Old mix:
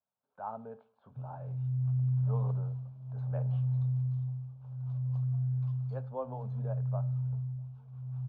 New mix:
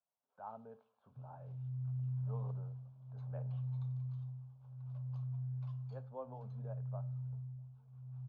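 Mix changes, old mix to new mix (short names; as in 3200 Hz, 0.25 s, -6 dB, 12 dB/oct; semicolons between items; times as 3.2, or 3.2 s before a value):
speech -8.5 dB; second sound -9.5 dB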